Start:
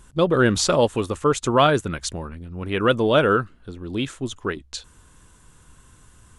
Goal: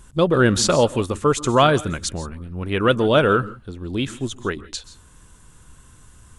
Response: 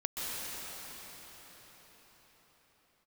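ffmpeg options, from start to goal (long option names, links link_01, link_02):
-filter_complex "[0:a]asplit=2[link_01][link_02];[link_02]bass=frequency=250:gain=10,treble=frequency=4000:gain=9[link_03];[1:a]atrim=start_sample=2205,afade=type=out:start_time=0.22:duration=0.01,atrim=end_sample=10143[link_04];[link_03][link_04]afir=irnorm=-1:irlink=0,volume=-15dB[link_05];[link_01][link_05]amix=inputs=2:normalize=0"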